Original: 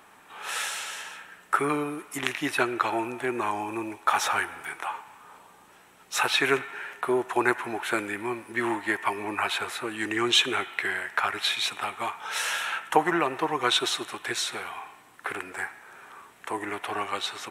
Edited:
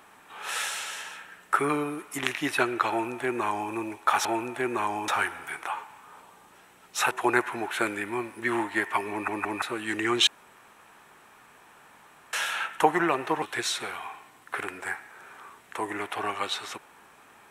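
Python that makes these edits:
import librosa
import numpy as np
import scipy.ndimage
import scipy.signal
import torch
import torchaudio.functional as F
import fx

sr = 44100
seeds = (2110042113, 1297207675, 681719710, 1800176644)

y = fx.edit(x, sr, fx.duplicate(start_s=2.89, length_s=0.83, to_s=4.25),
    fx.cut(start_s=6.28, length_s=0.95),
    fx.stutter_over(start_s=9.23, slice_s=0.17, count=3),
    fx.room_tone_fill(start_s=10.39, length_s=2.06),
    fx.cut(start_s=13.54, length_s=0.6), tone=tone)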